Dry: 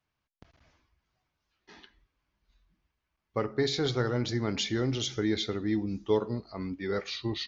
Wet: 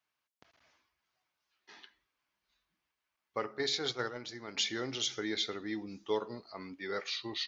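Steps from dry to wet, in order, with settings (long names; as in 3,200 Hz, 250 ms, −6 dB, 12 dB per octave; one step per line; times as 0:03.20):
high-pass filter 830 Hz 6 dB per octave
0:03.58–0:04.57: noise gate −34 dBFS, range −7 dB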